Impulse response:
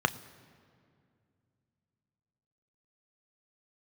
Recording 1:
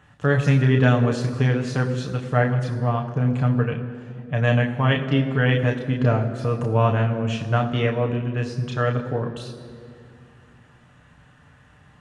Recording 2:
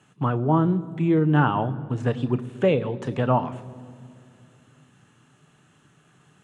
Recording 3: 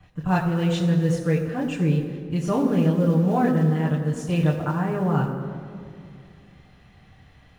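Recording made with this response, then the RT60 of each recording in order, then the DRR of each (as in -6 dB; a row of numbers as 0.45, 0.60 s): 2; 2.3, 2.3, 2.3 s; 1.5, 11.0, -6.5 dB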